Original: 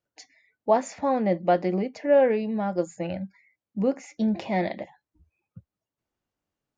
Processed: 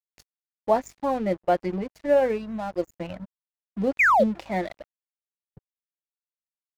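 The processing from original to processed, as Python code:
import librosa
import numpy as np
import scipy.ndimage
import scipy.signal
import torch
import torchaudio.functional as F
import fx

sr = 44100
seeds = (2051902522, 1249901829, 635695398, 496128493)

y = fx.dereverb_blind(x, sr, rt60_s=1.1)
y = fx.add_hum(y, sr, base_hz=50, snr_db=23)
y = fx.spec_paint(y, sr, seeds[0], shape='fall', start_s=3.99, length_s=0.25, low_hz=480.0, high_hz=2600.0, level_db=-17.0)
y = np.sign(y) * np.maximum(np.abs(y) - 10.0 ** (-42.0 / 20.0), 0.0)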